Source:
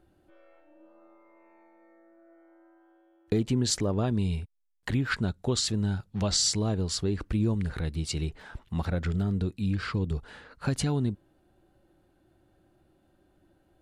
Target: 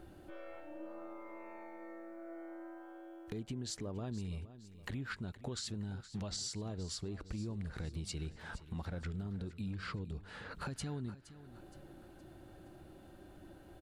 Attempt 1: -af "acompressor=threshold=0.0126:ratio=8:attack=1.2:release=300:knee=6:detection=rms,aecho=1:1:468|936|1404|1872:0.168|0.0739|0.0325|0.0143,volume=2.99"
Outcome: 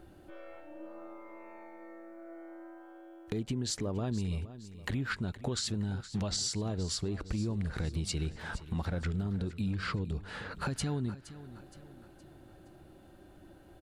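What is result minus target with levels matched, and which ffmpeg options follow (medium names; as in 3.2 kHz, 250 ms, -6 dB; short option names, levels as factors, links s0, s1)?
compression: peak gain reduction -7.5 dB
-af "acompressor=threshold=0.00473:ratio=8:attack=1.2:release=300:knee=6:detection=rms,aecho=1:1:468|936|1404|1872:0.168|0.0739|0.0325|0.0143,volume=2.99"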